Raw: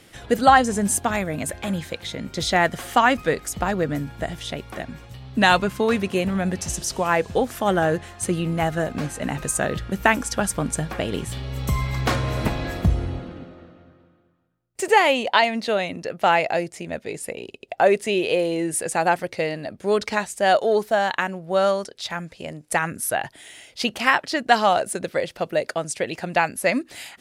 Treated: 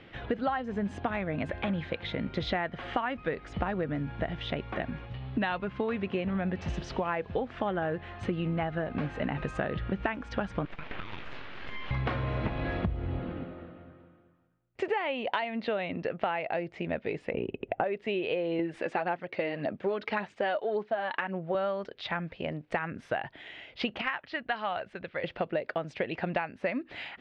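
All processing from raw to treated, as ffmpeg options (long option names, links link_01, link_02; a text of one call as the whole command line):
ffmpeg -i in.wav -filter_complex "[0:a]asettb=1/sr,asplit=3[link_01][link_02][link_03];[link_01]atrim=end=10.654[link_04];[link_02]atrim=start=10.65:end=11.91,asetpts=PTS-STARTPTS,afade=type=in:duration=0.004:curve=qsin,afade=type=out:start_time=1.256:duration=0.004:curve=qsin,highpass=frequency=790:width_type=q:width=2,aeval=exprs='abs(val(0))':channel_layout=same,acompressor=threshold=-31dB:ratio=12:attack=3.2:release=140:knee=1:detection=peak[link_05];[link_03]atrim=start=11.906[link_06];[link_04][link_05]acrossfade=duration=0.004:curve1=hsin:curve2=qsin[link_07];[link_07][link_06]acrossfade=duration=0.004:curve1=qsin:curve2=hsin,asettb=1/sr,asplit=3[link_08][link_09][link_10];[link_08]atrim=end=17.344[link_11];[link_09]atrim=start=17.34:end=17.84,asetpts=PTS-STARTPTS,afade=type=in:duration=0.004:curve=qsin,afade=type=out:start_time=0.496:duration=0.004:curve=qsin,lowpass=frequency=2800:width=0.5412,lowpass=frequency=2800:width=1.3066,lowshelf=frequency=460:gain=11.5,acompressor=mode=upward:threshold=-32dB:ratio=2.5:attack=3.2:release=140:knee=2.83:detection=peak[link_12];[link_10]atrim=start=17.836[link_13];[link_11][link_12]acrossfade=duration=0.004:curve1=hsin:curve2=qsin[link_14];[link_14][link_13]acrossfade=duration=0.004:curve1=qsin:curve2=hsin,asettb=1/sr,asplit=3[link_15][link_16][link_17];[link_15]atrim=end=18.594[link_18];[link_16]atrim=start=18.59:end=21.55,asetpts=PTS-STARTPTS,afade=type=in:duration=0.004:curve=qsin,afade=type=out:start_time=2.956:duration=0.004:curve=qsin,highpass=150,aphaser=in_gain=1:out_gain=1:delay=3.5:decay=0.42:speed=1.8:type=sinusoidal[link_19];[link_17]atrim=start=21.546[link_20];[link_18][link_19]acrossfade=duration=0.004:curve1=hsin:curve2=qsin[link_21];[link_21][link_20]acrossfade=duration=0.004:curve1=qsin:curve2=hsin,asettb=1/sr,asplit=3[link_22][link_23][link_24];[link_22]atrim=end=24.014[link_25];[link_23]atrim=start=24.01:end=25.24,asetpts=PTS-STARTPTS,afade=type=in:duration=0.004:curve=qsin,afade=type=out:start_time=1.226:duration=0.004:curve=qsin,lowpass=frequency=2300:poles=1,equalizer=frequency=330:width=0.31:gain=-14[link_26];[link_24]atrim=start=25.236[link_27];[link_25][link_26]acrossfade=duration=0.004:curve1=hsin:curve2=qsin[link_28];[link_28][link_27]acrossfade=duration=0.004:curve1=qsin:curve2=hsin,lowpass=frequency=3100:width=0.5412,lowpass=frequency=3100:width=1.3066,acompressor=threshold=-27dB:ratio=12" out.wav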